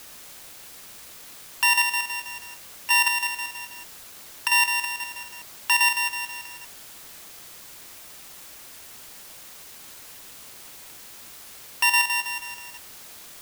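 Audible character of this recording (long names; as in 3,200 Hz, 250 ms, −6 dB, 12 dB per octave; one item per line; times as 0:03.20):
a buzz of ramps at a fixed pitch in blocks of 16 samples
chopped level 6.2 Hz, depth 65%, duty 75%
a quantiser's noise floor 8 bits, dither triangular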